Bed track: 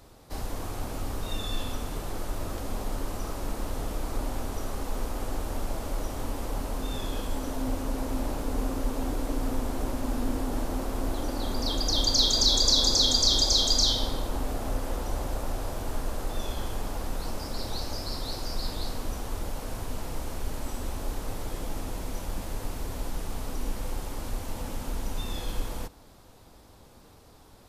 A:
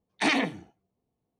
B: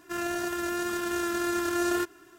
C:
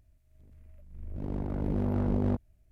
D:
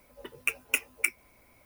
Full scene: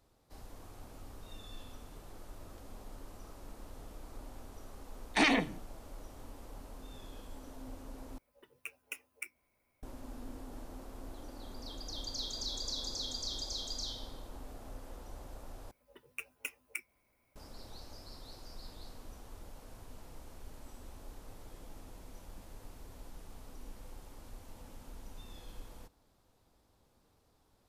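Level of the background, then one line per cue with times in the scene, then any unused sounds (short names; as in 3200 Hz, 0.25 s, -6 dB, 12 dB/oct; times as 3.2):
bed track -17 dB
4.95 add A -2.5 dB
8.18 replace with D -16.5 dB + notches 50/100/150/200/250/300 Hz
15.71 replace with D -14 dB
not used: B, C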